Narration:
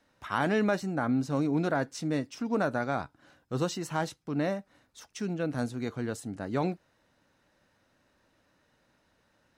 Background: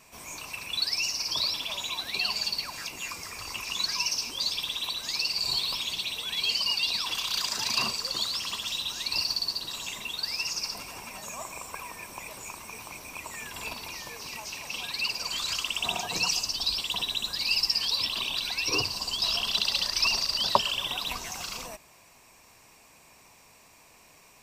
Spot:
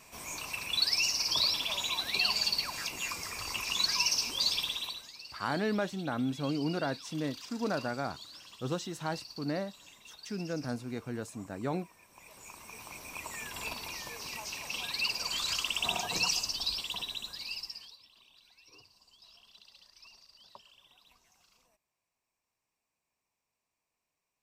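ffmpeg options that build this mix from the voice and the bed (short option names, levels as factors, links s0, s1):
-filter_complex "[0:a]adelay=5100,volume=0.596[s0];[1:a]volume=7.08,afade=t=out:st=4.55:d=0.56:silence=0.112202,afade=t=in:st=12.09:d=1.13:silence=0.141254,afade=t=out:st=16.13:d=1.85:silence=0.0354813[s1];[s0][s1]amix=inputs=2:normalize=0"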